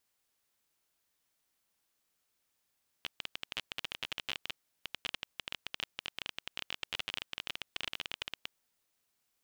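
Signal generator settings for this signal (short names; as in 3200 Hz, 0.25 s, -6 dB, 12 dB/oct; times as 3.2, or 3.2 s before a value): random clicks 20/s -19 dBFS 5.48 s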